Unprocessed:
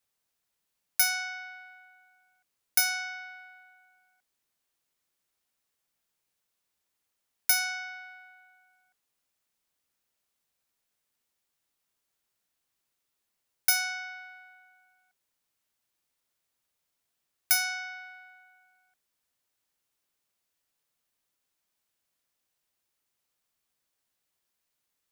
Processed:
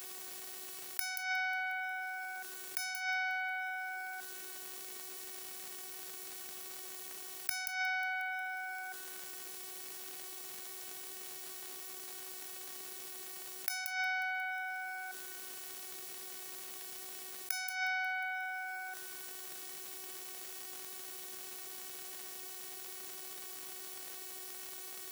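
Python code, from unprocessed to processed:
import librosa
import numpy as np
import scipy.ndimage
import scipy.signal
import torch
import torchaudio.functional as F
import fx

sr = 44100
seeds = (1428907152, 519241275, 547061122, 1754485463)

y = fx.peak_eq(x, sr, hz=390.0, db=7.5, octaves=1.4)
y = fx.robotise(y, sr, hz=375.0)
y = fx.gate_flip(y, sr, shuts_db=-21.0, range_db=-28)
y = fx.echo_wet_highpass(y, sr, ms=180, feedback_pct=51, hz=3000.0, wet_db=-17)
y = fx.dmg_crackle(y, sr, seeds[0], per_s=140.0, level_db=-70.0)
y = scipy.signal.sosfilt(scipy.signal.butter(4, 140.0, 'highpass', fs=sr, output='sos'), y)
y = fx.high_shelf(y, sr, hz=8900.0, db=4.5)
y = fx.env_flatten(y, sr, amount_pct=70)
y = y * 10.0 ** (1.5 / 20.0)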